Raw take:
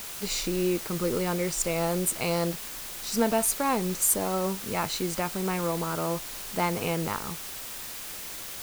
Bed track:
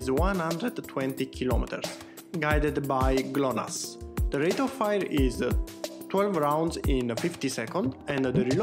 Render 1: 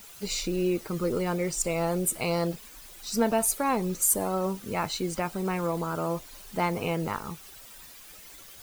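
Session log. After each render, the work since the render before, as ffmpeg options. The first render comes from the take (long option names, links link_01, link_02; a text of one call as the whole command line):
ffmpeg -i in.wav -af "afftdn=noise_reduction=12:noise_floor=-39" out.wav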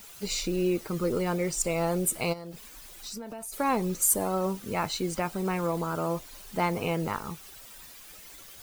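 ffmpeg -i in.wav -filter_complex "[0:a]asplit=3[link_01][link_02][link_03];[link_01]afade=type=out:start_time=2.32:duration=0.02[link_04];[link_02]acompressor=threshold=-35dB:ratio=16:attack=3.2:release=140:knee=1:detection=peak,afade=type=in:start_time=2.32:duration=0.02,afade=type=out:start_time=3.52:duration=0.02[link_05];[link_03]afade=type=in:start_time=3.52:duration=0.02[link_06];[link_04][link_05][link_06]amix=inputs=3:normalize=0" out.wav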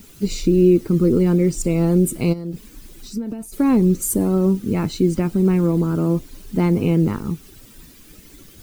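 ffmpeg -i in.wav -af "lowshelf=frequency=460:width_type=q:width=1.5:gain=13.5" out.wav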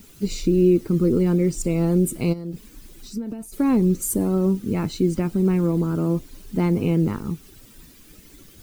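ffmpeg -i in.wav -af "volume=-3dB" out.wav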